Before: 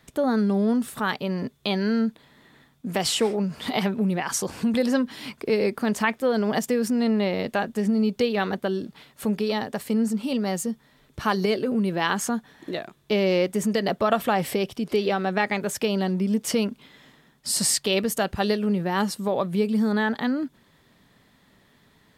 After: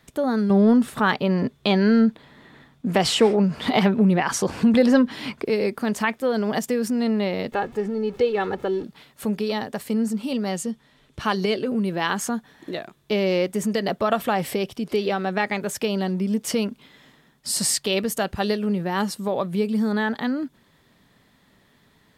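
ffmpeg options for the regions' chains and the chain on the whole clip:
-filter_complex "[0:a]asettb=1/sr,asplit=3[s0][s1][s2];[s0]atrim=end=0.504[s3];[s1]atrim=start=0.5:end=5.45,asetpts=PTS-STARTPTS,afade=t=in:d=0.004:c=qsin,afade=t=out:st=4.946:d=0.004:c=qsin,lowpass=f=3300:p=1,acontrast=62[s4];[s2]atrim=start=5.446[s5];[s3][s4]acrossfade=d=0.004:c1=hsin:c2=qsin[s6];[s6][s5]acrossfade=d=0.004:c1=qsin:c2=hsin,asettb=1/sr,asplit=3[s7][s8][s9];[s7]atrim=end=7.524[s10];[s8]atrim=start=7.52:end=8.84,asetpts=PTS-STARTPTS,afade=t=in:d=0.004:c=qsin,afade=t=out:st=1.316:d=0.004:c=qsin,aeval=exprs='val(0)+0.5*0.0126*sgn(val(0))':c=same,lowpass=f=1700:p=1,aecho=1:1:2.3:0.58,atrim=end_sample=58212[s11];[s9]atrim=start=8.836[s12];[s10][s11]acrossfade=d=0.004:c1=hsin:c2=qsin[s13];[s13][s12]acrossfade=d=0.004:c1=qsin:c2=hsin,asettb=1/sr,asplit=3[s14][s15][s16];[s14]atrim=end=10.494[s17];[s15]atrim=start=10.49:end=11.69,asetpts=PTS-STARTPTS,afade=t=in:d=0.004:c=qsin,afade=t=out:st=1.196:d=0.004:c=qsin,lowpass=11000,equalizer=f=3000:w=2.3:g=4[s18];[s16]atrim=start=11.686[s19];[s17][s18]acrossfade=d=0.004:c1=hsin:c2=qsin[s20];[s20][s19]acrossfade=d=0.004:c1=qsin:c2=hsin"

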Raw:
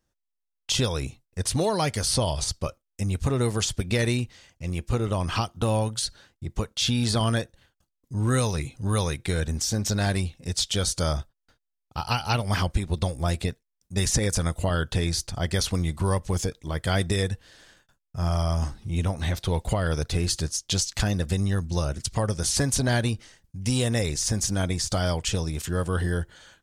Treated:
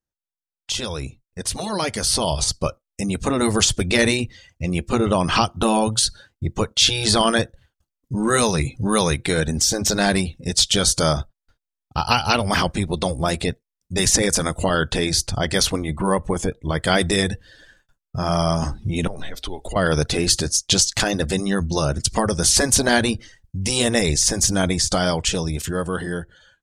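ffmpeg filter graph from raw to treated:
-filter_complex "[0:a]asettb=1/sr,asplit=3[s0][s1][s2];[s0]atrim=end=15.704[s3];[s1]atrim=start=15.7:end=16.69,asetpts=PTS-STARTPTS,afade=t=in:d=0.004:c=qsin,afade=t=out:st=0.986:d=0.004:c=qsin,lowpass=11000,equalizer=f=5200:t=o:w=1.1:g=-11[s4];[s2]atrim=start=16.686[s5];[s3][s4]acrossfade=d=0.004:c1=hsin:c2=qsin[s6];[s6][s5]acrossfade=d=0.004:c1=qsin:c2=hsin,asettb=1/sr,asplit=3[s7][s8][s9];[s7]atrim=end=19.074[s10];[s8]atrim=start=19.07:end=19.76,asetpts=PTS-STARTPTS,afade=t=in:d=0.004:c=qsin,afade=t=out:st=0.686:d=0.004:c=qsin,equalizer=f=160:w=2.4:g=-11,acompressor=threshold=0.02:ratio=12:attack=3.2:release=140:knee=1:detection=peak,afreqshift=-79[s11];[s9]atrim=start=19.756[s12];[s10][s11]acrossfade=d=0.004:c1=hsin:c2=qsin[s13];[s13][s12]acrossfade=d=0.004:c1=qsin:c2=hsin,afftfilt=real='re*lt(hypot(re,im),0.398)':imag='im*lt(hypot(re,im),0.398)':win_size=1024:overlap=0.75,afftdn=nr=14:nf=-50,dynaudnorm=f=930:g=5:m=3.76"

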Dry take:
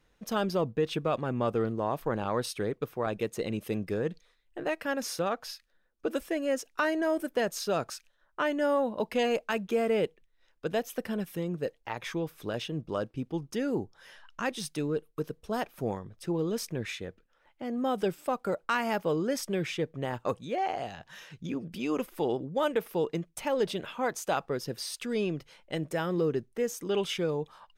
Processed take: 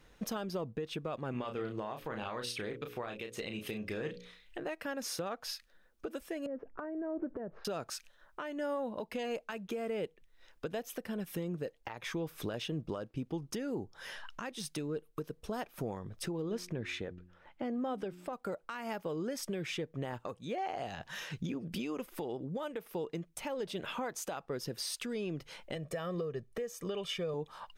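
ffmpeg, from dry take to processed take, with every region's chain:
-filter_complex "[0:a]asettb=1/sr,asplit=3[s0][s1][s2];[s0]atrim=end=1.314[s3];[s1]atrim=start=1.31:end=4.58,asetpts=PTS-STARTPTS,afade=t=in:d=0.004:c=qsin,afade=t=out:st=3.266:d=0.004:c=qsin,equalizer=f=2800:t=o:w=1.8:g=10.5,bandreject=f=60:t=h:w=6,bandreject=f=120:t=h:w=6,bandreject=f=180:t=h:w=6,bandreject=f=240:t=h:w=6,bandreject=f=300:t=h:w=6,bandreject=f=360:t=h:w=6,bandreject=f=420:t=h:w=6,bandreject=f=480:t=h:w=6,bandreject=f=540:t=h:w=6,asplit=2[s4][s5];[s5]adelay=33,volume=0.501[s6];[s4][s6]amix=inputs=2:normalize=0,atrim=end_sample=144207[s7];[s2]atrim=start=4.576[s8];[s3][s7]acrossfade=d=0.004:c1=hsin:c2=qsin[s9];[s9][s8]acrossfade=d=0.004:c1=qsin:c2=hsin,asettb=1/sr,asplit=3[s10][s11][s12];[s10]atrim=end=6.464[s13];[s11]atrim=start=6.46:end=7.65,asetpts=PTS-STARTPTS,afade=t=in:d=0.004:c=qsin,afade=t=out:st=1.186:d=0.004:c=qsin,lowpass=f=1700:w=0.5412,lowpass=f=1700:w=1.3066,tiltshelf=f=880:g=8,acompressor=threshold=0.0178:ratio=5:attack=3.2:release=140:knee=1:detection=peak[s14];[s12]atrim=start=7.646[s15];[s13][s14]acrossfade=d=0.004:c1=hsin:c2=qsin[s16];[s16][s15]acrossfade=d=0.004:c1=qsin:c2=hsin,asettb=1/sr,asplit=3[s17][s18][s19];[s17]atrim=end=16.424[s20];[s18]atrim=start=16.42:end=18.33,asetpts=PTS-STARTPTS,afade=t=in:d=0.004:c=qsin,afade=t=out:st=1.906:d=0.004:c=qsin,lowpass=f=3000:p=1,bandreject=f=89.32:t=h:w=4,bandreject=f=178.64:t=h:w=4,bandreject=f=267.96:t=h:w=4,bandreject=f=357.28:t=h:w=4[s21];[s19]atrim=start=18.326[s22];[s20][s21]acrossfade=d=0.004:c1=hsin:c2=qsin[s23];[s23][s22]acrossfade=d=0.004:c1=qsin:c2=hsin,asettb=1/sr,asplit=3[s24][s25][s26];[s24]atrim=end=25.754[s27];[s25]atrim=start=25.75:end=27.34,asetpts=PTS-STARTPTS,afade=t=in:d=0.004:c=qsin,afade=t=out:st=1.586:d=0.004:c=qsin,highshelf=f=5800:g=-4.5,aecho=1:1:1.7:0.64,atrim=end_sample=70119[s28];[s26]atrim=start=27.336[s29];[s27][s28]acrossfade=d=0.004:c1=hsin:c2=qsin[s30];[s30][s29]acrossfade=d=0.004:c1=qsin:c2=hsin,acompressor=threshold=0.0112:ratio=5,alimiter=level_in=3.55:limit=0.0631:level=0:latency=1:release=487,volume=0.282,volume=2.24"

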